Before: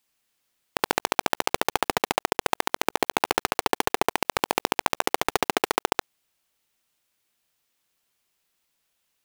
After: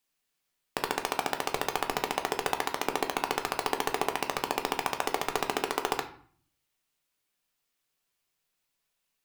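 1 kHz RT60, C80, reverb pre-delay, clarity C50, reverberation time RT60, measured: 0.50 s, 15.5 dB, 3 ms, 12.0 dB, 0.50 s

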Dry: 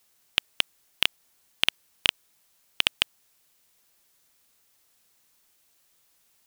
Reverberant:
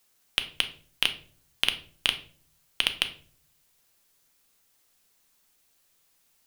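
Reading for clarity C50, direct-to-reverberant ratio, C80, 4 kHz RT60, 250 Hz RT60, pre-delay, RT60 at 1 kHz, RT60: 13.5 dB, 7.5 dB, 17.5 dB, 0.35 s, 0.80 s, 4 ms, 0.35 s, 0.45 s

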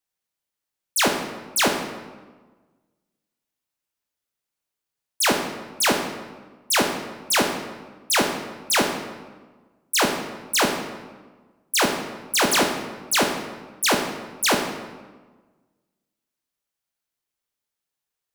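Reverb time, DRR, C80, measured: 1.4 s, 3.0 dB, 7.5 dB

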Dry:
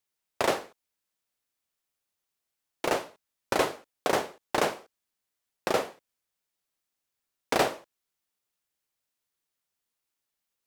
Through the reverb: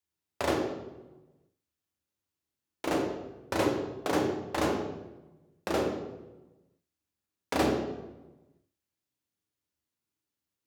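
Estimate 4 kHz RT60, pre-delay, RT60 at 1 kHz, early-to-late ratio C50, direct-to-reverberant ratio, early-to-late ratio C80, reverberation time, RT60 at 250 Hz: 0.75 s, 3 ms, 1.0 s, 3.5 dB, 1.0 dB, 6.0 dB, 1.1 s, 1.3 s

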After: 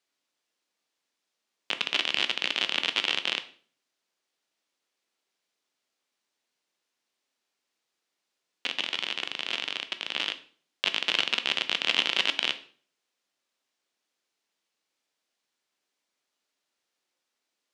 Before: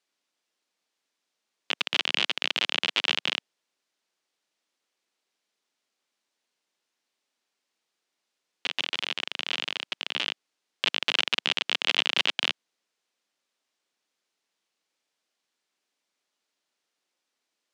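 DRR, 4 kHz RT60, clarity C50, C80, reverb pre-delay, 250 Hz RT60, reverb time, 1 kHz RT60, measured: 9.5 dB, 0.40 s, 15.0 dB, 18.5 dB, 11 ms, 0.55 s, 0.45 s, 0.40 s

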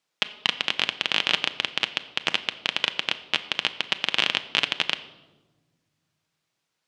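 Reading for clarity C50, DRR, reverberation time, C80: 14.5 dB, 10.0 dB, 1.2 s, 16.5 dB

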